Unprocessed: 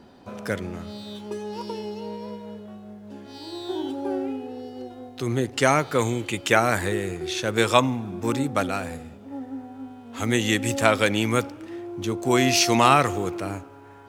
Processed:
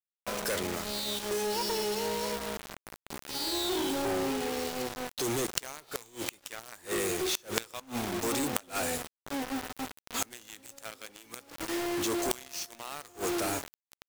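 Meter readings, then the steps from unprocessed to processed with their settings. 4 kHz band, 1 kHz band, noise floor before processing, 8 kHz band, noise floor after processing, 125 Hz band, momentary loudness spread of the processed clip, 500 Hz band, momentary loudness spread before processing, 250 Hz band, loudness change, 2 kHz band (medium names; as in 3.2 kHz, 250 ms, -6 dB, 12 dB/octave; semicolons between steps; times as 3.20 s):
-5.0 dB, -11.5 dB, -46 dBFS, -3.0 dB, under -85 dBFS, -16.0 dB, 14 LU, -8.5 dB, 19 LU, -9.5 dB, -9.0 dB, -11.0 dB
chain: tone controls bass -13 dB, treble +10 dB; companded quantiser 2-bit; inverted gate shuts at -10 dBFS, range -27 dB; trim -4 dB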